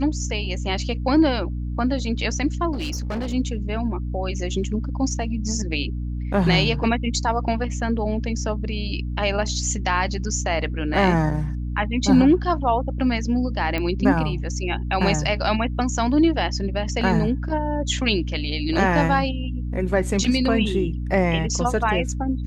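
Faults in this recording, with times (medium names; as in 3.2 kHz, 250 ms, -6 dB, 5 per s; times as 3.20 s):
hum 60 Hz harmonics 5 -27 dBFS
2.72–3.34 s: clipped -23 dBFS
13.78 s: pop -13 dBFS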